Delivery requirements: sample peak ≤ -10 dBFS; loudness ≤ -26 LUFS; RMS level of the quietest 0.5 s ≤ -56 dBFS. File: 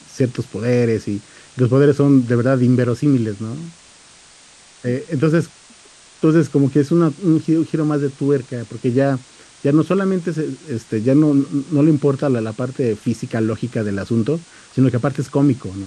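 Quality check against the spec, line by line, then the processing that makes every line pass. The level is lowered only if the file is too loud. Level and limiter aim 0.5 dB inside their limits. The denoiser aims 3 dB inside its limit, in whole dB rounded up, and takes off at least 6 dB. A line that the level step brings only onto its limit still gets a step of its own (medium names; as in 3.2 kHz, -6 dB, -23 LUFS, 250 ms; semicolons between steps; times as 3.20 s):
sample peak -3.0 dBFS: fail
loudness -18.0 LUFS: fail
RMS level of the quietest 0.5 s -46 dBFS: fail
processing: noise reduction 6 dB, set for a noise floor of -46 dBFS; trim -8.5 dB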